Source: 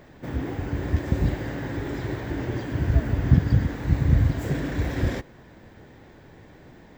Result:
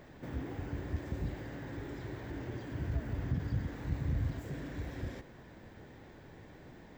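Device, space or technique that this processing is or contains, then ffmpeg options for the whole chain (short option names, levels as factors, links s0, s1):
de-esser from a sidechain: -filter_complex "[0:a]asplit=2[s0][s1];[s1]highpass=f=4900:p=1,apad=whole_len=307427[s2];[s0][s2]sidechaincompress=threshold=0.00251:ratio=8:attack=0.83:release=29,volume=0.596"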